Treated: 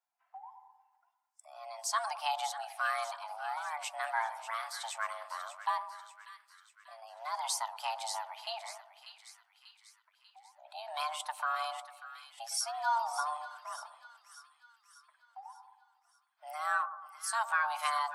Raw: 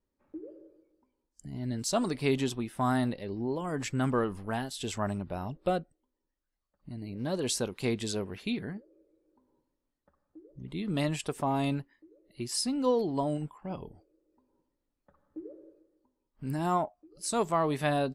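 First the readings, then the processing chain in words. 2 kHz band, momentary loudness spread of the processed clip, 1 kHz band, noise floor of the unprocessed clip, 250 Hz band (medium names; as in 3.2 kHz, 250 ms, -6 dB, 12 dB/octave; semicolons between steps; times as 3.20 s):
+4.0 dB, 21 LU, +2.0 dB, -84 dBFS, under -40 dB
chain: coarse spectral quantiser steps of 15 dB; high-pass 380 Hz 12 dB/octave; two-band feedback delay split 840 Hz, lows 109 ms, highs 591 ms, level -11 dB; frequency shift +450 Hz; trim -2 dB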